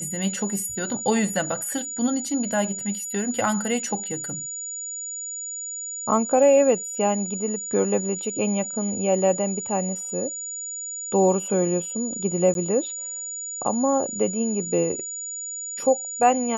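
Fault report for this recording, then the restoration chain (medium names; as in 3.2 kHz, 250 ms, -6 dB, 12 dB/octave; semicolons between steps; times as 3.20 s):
whine 6.9 kHz -30 dBFS
12.54–12.55 s: dropout 12 ms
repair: band-stop 6.9 kHz, Q 30; interpolate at 12.54 s, 12 ms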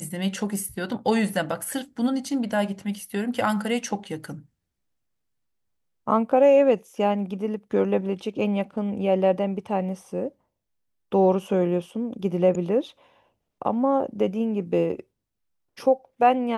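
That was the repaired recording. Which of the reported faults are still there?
nothing left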